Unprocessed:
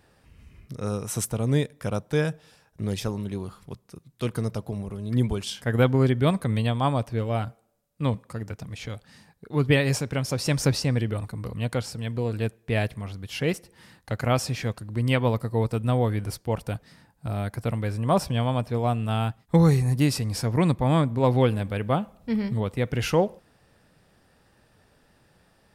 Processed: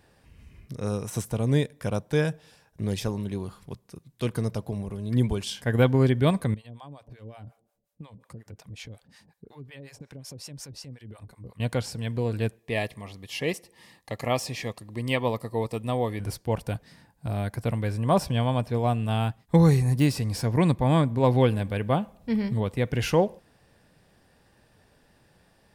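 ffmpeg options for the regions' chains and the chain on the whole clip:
ffmpeg -i in.wav -filter_complex "[0:a]asettb=1/sr,asplit=3[link_01][link_02][link_03];[link_01]atrim=end=6.544[link_04];[link_02]atrim=start=6.54:end=11.6,asetpts=PTS-STARTPTS,afade=type=in:duration=0.004:curve=qsin,afade=type=out:start_time=5.056:duration=0.004:curve=qsin,acompressor=threshold=-36dB:ratio=6:attack=3.2:release=140:knee=1:detection=peak,acrossover=split=600[link_05][link_06];[link_05]aeval=exprs='val(0)*(1-1/2+1/2*cos(2*PI*5.5*n/s))':channel_layout=same[link_07];[link_06]aeval=exprs='val(0)*(1-1/2-1/2*cos(2*PI*5.5*n/s))':channel_layout=same[link_08];[link_07][link_08]amix=inputs=2:normalize=0[link_09];[link_03]atrim=start=11.596[link_10];[link_04][link_09]acrossfade=duration=0.004:curve1=hsin:curve2=qsin[link_11];[link_11][link_10]acrossfade=duration=0.004:curve1=qsin:curve2=hsin,asettb=1/sr,asplit=3[link_12][link_13][link_14];[link_12]atrim=end=12.594[link_15];[link_13]atrim=start=12.59:end=16.2,asetpts=PTS-STARTPTS,afade=type=in:duration=0.004:curve=qsin,afade=type=out:start_time=3.606:duration=0.004:curve=qsin,asuperstop=centerf=1500:order=8:qfactor=5.2,lowshelf=frequency=180:gain=-11.5[link_16];[link_14]atrim=start=16.196[link_17];[link_15][link_16]acrossfade=duration=0.004:curve1=hsin:curve2=qsin[link_18];[link_18][link_17]acrossfade=duration=0.004:curve1=qsin:curve2=hsin,deesser=0.6,bandreject=frequency=1300:width=10" out.wav

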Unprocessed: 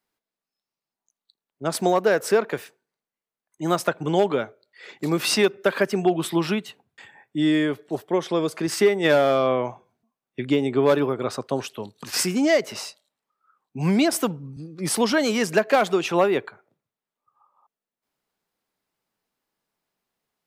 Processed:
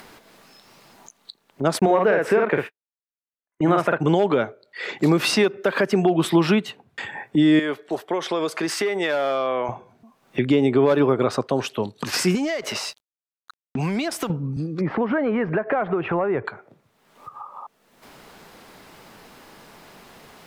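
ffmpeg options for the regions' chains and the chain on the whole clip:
ffmpeg -i in.wav -filter_complex "[0:a]asettb=1/sr,asplit=3[link_01][link_02][link_03];[link_01]atrim=end=1.794[link_04];[link_02]atrim=start=1.79:end=4,asetpts=PTS-STARTPTS,afade=type=in:duration=0.004:curve=qsin,afade=type=out:start_time=2.206:duration=0.004:curve=qsin,asplit=2[link_05][link_06];[link_06]adelay=48,volume=-4dB[link_07];[link_05][link_07]amix=inputs=2:normalize=0,atrim=end_sample=97461,agate=range=-50dB:threshold=-42dB:ratio=16:release=100:detection=peak,highshelf=frequency=3400:width_type=q:width=1.5:gain=-10.5[link_08];[link_03]atrim=start=3.996[link_09];[link_04][link_08]acrossfade=duration=0.004:curve1=hsin:curve2=qsin[link_10];[link_10][link_09]acrossfade=duration=0.004:curve1=qsin:curve2=hsin,asettb=1/sr,asplit=3[link_11][link_12][link_13];[link_11]atrim=end=7.594[link_14];[link_12]atrim=start=7.59:end=9.69,asetpts=PTS-STARTPTS,afade=type=in:duration=0.004:curve=qsin,afade=type=out:start_time=2.096:duration=0.004:curve=qsin,highpass=frequency=700:poles=1,acompressor=threshold=-27dB:ratio=6:attack=3.2:release=140:knee=1:detection=peak[link_15];[link_13]atrim=start=9.686[link_16];[link_14][link_15]acrossfade=duration=0.004:curve1=hsin:curve2=qsin[link_17];[link_17][link_16]acrossfade=duration=0.004:curve1=qsin:curve2=hsin,asettb=1/sr,asplit=3[link_18][link_19][link_20];[link_18]atrim=end=12.354[link_21];[link_19]atrim=start=12.35:end=14.3,asetpts=PTS-STARTPTS,afade=type=in:duration=0.004:curve=qsin,afade=type=out:start_time=1.946:duration=0.004:curve=qsin,tiltshelf=frequency=630:gain=-4,acompressor=threshold=-28dB:ratio=16:attack=3.2:release=140:knee=1:detection=peak,aeval=exprs='sgn(val(0))*max(abs(val(0))-0.00224,0)':channel_layout=same[link_22];[link_20]atrim=start=14.296[link_23];[link_21][link_22]acrossfade=duration=0.004:curve1=hsin:curve2=qsin[link_24];[link_24][link_23]acrossfade=duration=0.004:curve1=qsin:curve2=hsin,asettb=1/sr,asplit=3[link_25][link_26][link_27];[link_25]atrim=end=14.814[link_28];[link_26]atrim=start=14.81:end=16.45,asetpts=PTS-STARTPTS,afade=type=in:duration=0.004:curve=qsin,afade=type=out:start_time=1.636:duration=0.004:curve=qsin,lowpass=frequency=1900:width=0.5412,lowpass=frequency=1900:width=1.3066,asubboost=boost=11:cutoff=99,acompressor=threshold=-27dB:ratio=5:attack=3.2:release=140:knee=1:detection=peak[link_29];[link_27]atrim=start=16.446[link_30];[link_28][link_29]acrossfade=duration=0.004:curve1=hsin:curve2=qsin[link_31];[link_31][link_30]acrossfade=duration=0.004:curve1=qsin:curve2=hsin,acompressor=mode=upward:threshold=-30dB:ratio=2.5,alimiter=limit=-17dB:level=0:latency=1:release=135,aemphasis=mode=reproduction:type=cd,volume=8dB" out.wav

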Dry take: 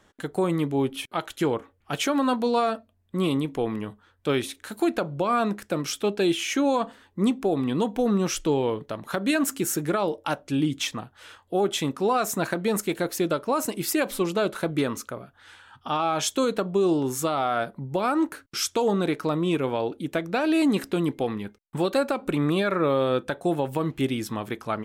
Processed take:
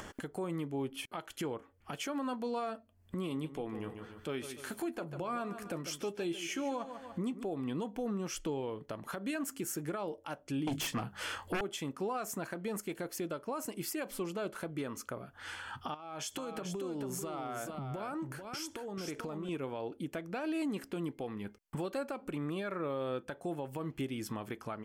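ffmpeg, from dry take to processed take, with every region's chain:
ffmpeg -i in.wav -filter_complex "[0:a]asettb=1/sr,asplit=3[link_01][link_02][link_03];[link_01]atrim=end=3.294[link_04];[link_02]atrim=start=3.29:end=7.44,asetpts=PTS-STARTPTS,afade=type=in:duration=0.004:curve=qsin,afade=type=out:start_time=4.146:duration=0.004:curve=qsin,asplit=2[link_05][link_06];[link_06]adelay=12,volume=-10.5dB[link_07];[link_05][link_07]amix=inputs=2:normalize=0,atrim=end_sample=183015,aecho=1:1:147|294|441:0.224|0.0627|0.0176,atrim=end_sample=183015[link_08];[link_03]atrim=start=7.436[link_09];[link_04][link_08]acrossfade=duration=0.004:curve1=hsin:curve2=qsin[link_10];[link_10][link_09]acrossfade=duration=0.004:curve1=qsin:curve2=hsin,asettb=1/sr,asplit=3[link_11][link_12][link_13];[link_11]atrim=end=10.674[link_14];[link_12]atrim=start=10.67:end=11.61,asetpts=PTS-STARTPTS,afade=type=in:duration=0.004:curve=qsin,afade=type=out:start_time=0.936:duration=0.004:curve=qsin,bandreject=frequency=50:width_type=h:width=6,bandreject=frequency=100:width_type=h:width=6,bandreject=frequency=150:width_type=h:width=6,bandreject=frequency=200:width_type=h:width=6,aeval=exprs='0.2*sin(PI/2*3.98*val(0)/0.2)':channel_layout=same,asplit=2[link_15][link_16];[link_16]adelay=25,volume=-13dB[link_17];[link_15][link_17]amix=inputs=2:normalize=0,atrim=end_sample=41454[link_18];[link_13]atrim=start=11.606[link_19];[link_14][link_18]acrossfade=duration=0.004:curve1=hsin:curve2=qsin[link_20];[link_20][link_19]acrossfade=duration=0.004:curve1=qsin:curve2=hsin,asettb=1/sr,asplit=3[link_21][link_22][link_23];[link_21]atrim=end=15.944[link_24];[link_22]atrim=start=15.94:end=19.49,asetpts=PTS-STARTPTS,afade=type=in:duration=0.004:curve=qsin,afade=type=out:start_time=3.546:duration=0.004:curve=qsin,acompressor=threshold=-34dB:ratio=10:attack=3.2:release=140:knee=1:detection=peak,aecho=1:1:440:0.473,atrim=end_sample=156555[link_25];[link_23]atrim=start=19.486[link_26];[link_24][link_25]acrossfade=duration=0.004:curve1=hsin:curve2=qsin[link_27];[link_27][link_26]acrossfade=duration=0.004:curve1=qsin:curve2=hsin,bandreject=frequency=3800:width=6.3,acompressor=mode=upward:threshold=-24dB:ratio=2.5,alimiter=limit=-21.5dB:level=0:latency=1:release=359,volume=-7dB" out.wav

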